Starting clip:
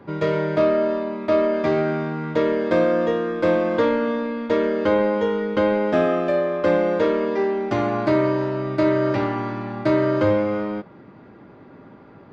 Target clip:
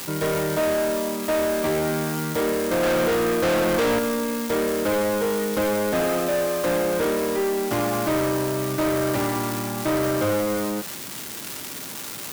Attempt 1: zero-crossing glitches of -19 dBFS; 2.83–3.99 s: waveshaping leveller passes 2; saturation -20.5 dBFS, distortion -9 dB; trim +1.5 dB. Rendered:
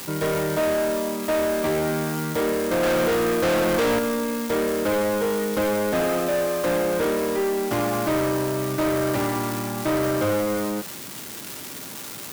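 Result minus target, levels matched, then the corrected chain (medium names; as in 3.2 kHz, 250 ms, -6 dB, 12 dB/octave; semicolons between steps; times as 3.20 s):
zero-crossing glitches: distortion -11 dB
zero-crossing glitches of -7.5 dBFS; 2.83–3.99 s: waveshaping leveller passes 2; saturation -20.5 dBFS, distortion -6 dB; trim +1.5 dB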